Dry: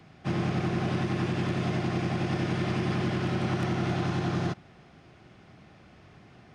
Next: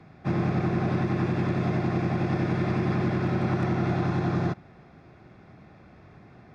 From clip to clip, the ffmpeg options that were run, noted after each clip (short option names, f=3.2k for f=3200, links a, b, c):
-af "aemphasis=mode=reproduction:type=75kf,bandreject=f=3k:w=5.2,volume=3dB"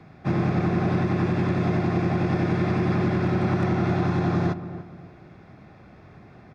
-filter_complex "[0:a]asplit=2[a][b];[b]adelay=288,lowpass=f=1.3k:p=1,volume=-12dB,asplit=2[c][d];[d]adelay=288,lowpass=f=1.3k:p=1,volume=0.36,asplit=2[e][f];[f]adelay=288,lowpass=f=1.3k:p=1,volume=0.36,asplit=2[g][h];[h]adelay=288,lowpass=f=1.3k:p=1,volume=0.36[i];[a][c][e][g][i]amix=inputs=5:normalize=0,volume=2.5dB"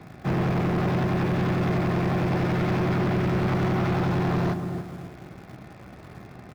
-filter_complex "[0:a]asplit=2[a][b];[b]acrusher=bits=6:mix=0:aa=0.000001,volume=-11dB[c];[a][c]amix=inputs=2:normalize=0,asoftclip=type=tanh:threshold=-24.5dB,asplit=2[d][e];[e]adelay=16,volume=-11.5dB[f];[d][f]amix=inputs=2:normalize=0,volume=3dB"